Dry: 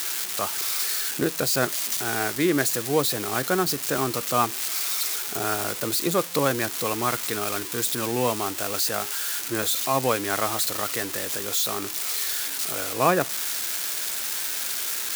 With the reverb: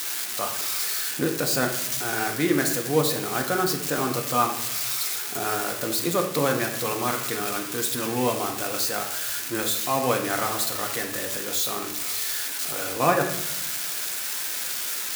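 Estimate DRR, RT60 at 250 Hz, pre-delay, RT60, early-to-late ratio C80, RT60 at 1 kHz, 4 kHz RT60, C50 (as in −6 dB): 2.0 dB, 1.1 s, 4 ms, 0.80 s, 10.0 dB, 0.75 s, 0.60 s, 7.5 dB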